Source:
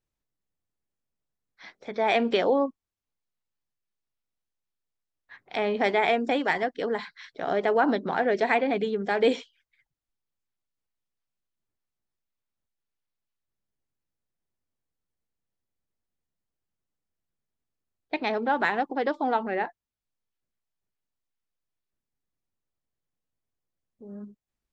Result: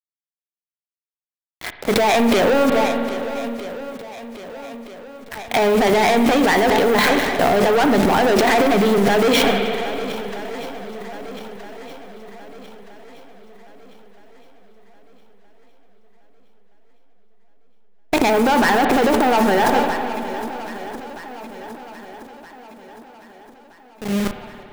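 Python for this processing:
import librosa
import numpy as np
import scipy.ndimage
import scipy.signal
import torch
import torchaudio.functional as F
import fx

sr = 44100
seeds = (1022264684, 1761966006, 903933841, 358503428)

p1 = fx.delta_hold(x, sr, step_db=-42.5)
p2 = fx.leveller(p1, sr, passes=5)
p3 = p2 + fx.echo_swing(p2, sr, ms=1271, ratio=1.5, feedback_pct=46, wet_db=-19.0, dry=0)
p4 = fx.transient(p3, sr, attack_db=-2, sustain_db=11)
p5 = fx.rev_spring(p4, sr, rt60_s=2.5, pass_ms=(55,), chirp_ms=35, drr_db=8.0)
p6 = fx.over_compress(p5, sr, threshold_db=-17.0, ratio=-0.5)
p7 = p5 + F.gain(torch.from_numpy(p6), -2.0).numpy()
y = F.gain(torch.from_numpy(p7), -5.0).numpy()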